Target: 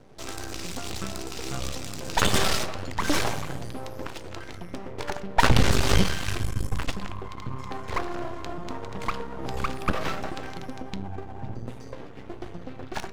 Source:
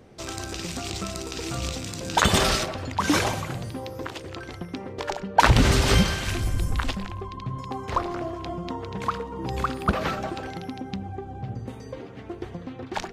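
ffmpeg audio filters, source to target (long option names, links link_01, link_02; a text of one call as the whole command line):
ffmpeg -i in.wav -af "aeval=exprs='max(val(0),0)':channel_layout=same,flanger=delay=6.8:depth=3.9:regen=86:speed=0.58:shape=sinusoidal,volume=6dB" out.wav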